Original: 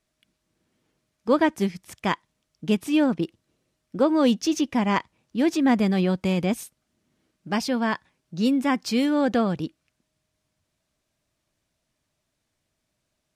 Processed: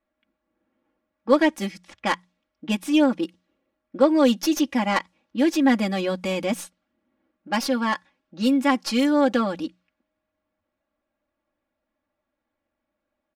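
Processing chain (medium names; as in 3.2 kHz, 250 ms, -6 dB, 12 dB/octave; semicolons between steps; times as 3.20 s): tracing distortion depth 0.057 ms; level-controlled noise filter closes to 1.5 kHz, open at -22 dBFS; bass shelf 210 Hz -10.5 dB; hum notches 60/120/180 Hz; comb 3.6 ms, depth 98%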